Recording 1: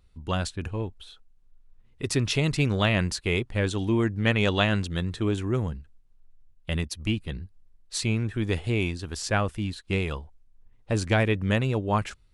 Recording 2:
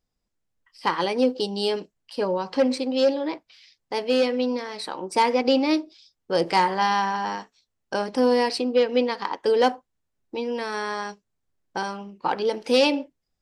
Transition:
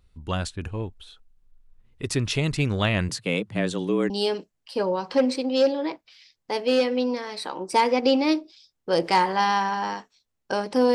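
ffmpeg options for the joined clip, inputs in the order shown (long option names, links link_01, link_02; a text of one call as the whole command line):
ffmpeg -i cue0.wav -i cue1.wav -filter_complex "[0:a]asettb=1/sr,asplit=3[link_01][link_02][link_03];[link_01]atrim=end=3.094[link_04];[link_02]atrim=start=3.09:end=4.1,asetpts=PTS-STARTPTS,afade=type=in:duration=0.004:curve=qsin,afade=type=out:start_time=1.006:duration=0.004:curve=qsin,afreqshift=84[link_05];[link_03]atrim=start=4.096[link_06];[link_04][link_05]acrossfade=duration=0.004:curve1=hsin:curve2=qsin[link_07];[link_07][link_06]acrossfade=duration=0.004:curve1=qsin:curve2=hsin,apad=whole_dur=10.94,atrim=end=10.94,atrim=end=4.102[link_08];[1:a]atrim=start=1.518:end=8.36[link_09];[link_08][link_09]acrossfade=duration=0.004:curve1=hsin:curve2=hsin" out.wav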